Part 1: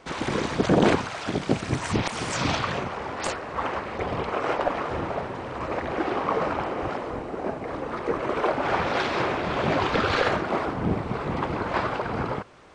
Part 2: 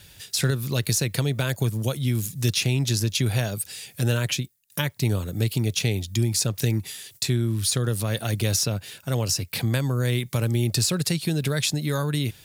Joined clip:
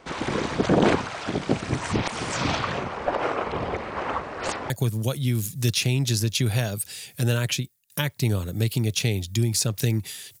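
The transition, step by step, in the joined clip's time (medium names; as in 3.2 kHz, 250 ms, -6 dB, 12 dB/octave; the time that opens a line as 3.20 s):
part 1
3.06–4.70 s: reverse
4.70 s: go over to part 2 from 1.50 s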